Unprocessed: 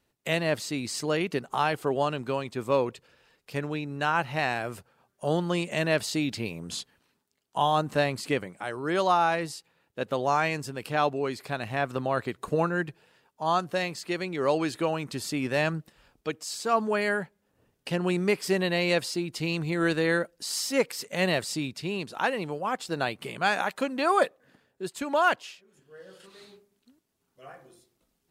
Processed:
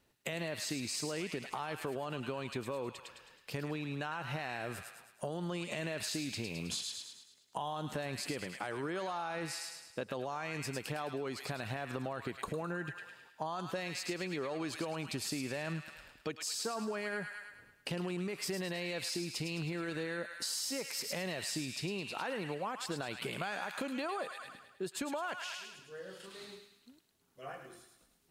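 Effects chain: limiter -22.5 dBFS, peak gain reduction 11.5 dB; thin delay 0.106 s, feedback 50%, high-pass 1500 Hz, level -4.5 dB; compressor, threshold -36 dBFS, peak gain reduction 9.5 dB; gain +1 dB

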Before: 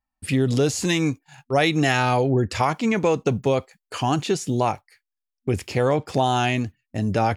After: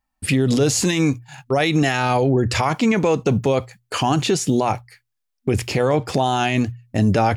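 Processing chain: notches 60/120 Hz; limiter -16.5 dBFS, peak gain reduction 9 dB; gain +7.5 dB

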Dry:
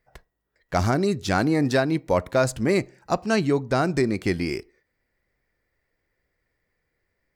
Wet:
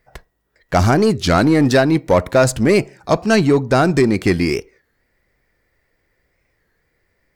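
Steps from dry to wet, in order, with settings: in parallel at -3 dB: hard clip -22 dBFS, distortion -8 dB; on the sum: record warp 33 1/3 rpm, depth 160 cents; gain +5 dB

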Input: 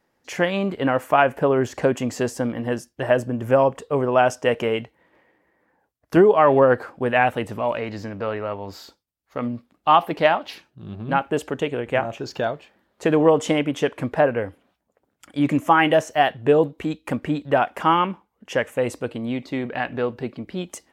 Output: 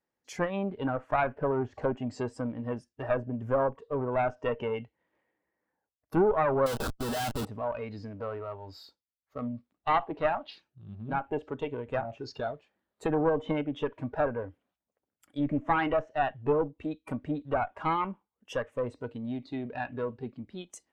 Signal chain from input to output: one diode to ground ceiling -20.5 dBFS; treble ducked by the level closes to 2300 Hz, closed at -20 dBFS; 6.66–7.45 Schmitt trigger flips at -36 dBFS; spectral noise reduction 11 dB; gain -6.5 dB

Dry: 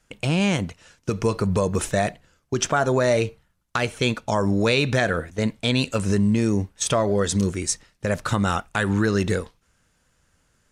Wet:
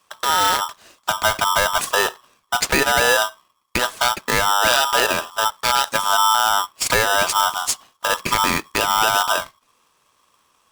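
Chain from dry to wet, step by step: polarity switched at an audio rate 1100 Hz; gain +3 dB

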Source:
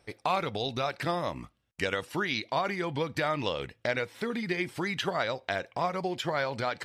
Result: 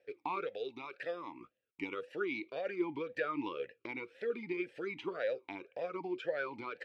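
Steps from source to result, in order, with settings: 0.46–1.41 low shelf 440 Hz -8 dB; vowel sweep e-u 1.9 Hz; gain +3.5 dB

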